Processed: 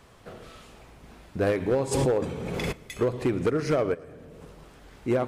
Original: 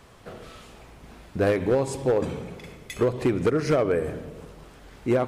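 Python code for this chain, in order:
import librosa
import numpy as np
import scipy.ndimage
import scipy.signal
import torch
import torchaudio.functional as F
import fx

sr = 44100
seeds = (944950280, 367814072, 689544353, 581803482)

p1 = fx.level_steps(x, sr, step_db=22, at=(3.93, 4.41), fade=0.02)
p2 = p1 + fx.echo_feedback(p1, sr, ms=115, feedback_pct=47, wet_db=-21.0, dry=0)
p3 = fx.pre_swell(p2, sr, db_per_s=21.0, at=(1.91, 2.71), fade=0.02)
y = p3 * 10.0 ** (-2.5 / 20.0)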